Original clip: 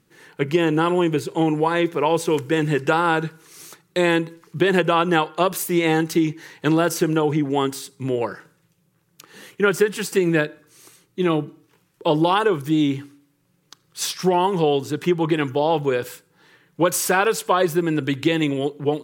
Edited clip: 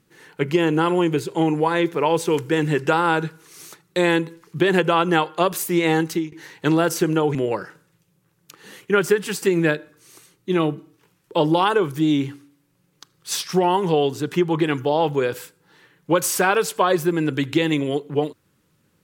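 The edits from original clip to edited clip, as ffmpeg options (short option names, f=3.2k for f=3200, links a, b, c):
-filter_complex "[0:a]asplit=3[a][b][c];[a]atrim=end=6.32,asetpts=PTS-STARTPTS,afade=t=out:st=5.97:d=0.35:c=qsin:silence=0.0707946[d];[b]atrim=start=6.32:end=7.352,asetpts=PTS-STARTPTS,afade=t=in:d=0.004:c=hsin:silence=0.0707946[e];[c]atrim=start=8.048[f];[d][e]concat=n=2:v=0:a=1[g];[g][f]acrossfade=d=0.004:c1=hsin:c2=hsin"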